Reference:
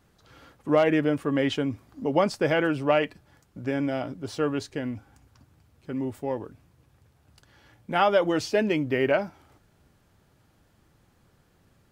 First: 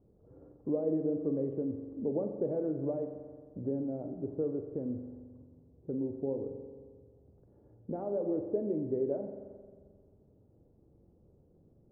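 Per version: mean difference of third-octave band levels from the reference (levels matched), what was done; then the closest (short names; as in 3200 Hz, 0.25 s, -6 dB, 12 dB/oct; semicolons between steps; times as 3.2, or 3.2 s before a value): 11.0 dB: compressor 2.5:1, threshold -34 dBFS, peak gain reduction 12 dB; ladder low-pass 570 Hz, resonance 40%; spring tank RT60 1.7 s, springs 44 ms, chirp 50 ms, DRR 6 dB; gain +5.5 dB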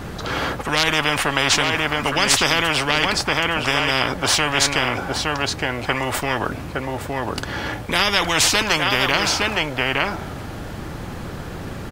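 15.5 dB: high shelf 4600 Hz -8.5 dB; on a send: echo 0.865 s -11.5 dB; on the sum: spectral compressor 10:1; gain +7 dB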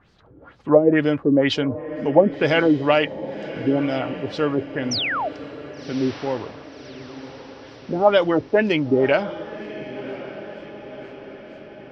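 6.5 dB: LFO low-pass sine 2.1 Hz 330–5100 Hz; painted sound fall, 4.91–5.29, 560–6200 Hz -28 dBFS; on a send: diffused feedback echo 1.113 s, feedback 55%, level -14 dB; on the sum: gain +4 dB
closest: third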